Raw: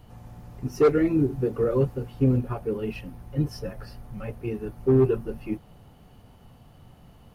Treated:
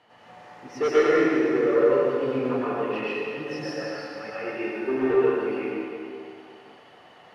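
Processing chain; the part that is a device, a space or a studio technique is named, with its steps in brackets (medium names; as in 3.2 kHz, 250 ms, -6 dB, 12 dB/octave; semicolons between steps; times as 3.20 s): intercom (band-pass 500–4500 Hz; peaking EQ 1.9 kHz +7 dB 0.48 oct; saturation -17 dBFS, distortion -16 dB); 4.34–4.97 s: comb 3.3 ms; plate-style reverb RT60 2.4 s, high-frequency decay 1×, pre-delay 90 ms, DRR -9 dB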